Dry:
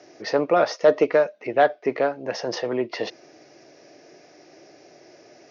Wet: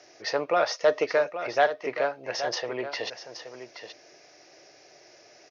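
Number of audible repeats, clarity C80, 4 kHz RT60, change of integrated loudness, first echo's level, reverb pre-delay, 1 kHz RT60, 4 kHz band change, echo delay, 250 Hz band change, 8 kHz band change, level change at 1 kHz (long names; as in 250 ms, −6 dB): 1, no reverb audible, no reverb audible, −4.5 dB, −10.5 dB, no reverb audible, no reverb audible, +1.5 dB, 825 ms, −10.5 dB, can't be measured, −3.5 dB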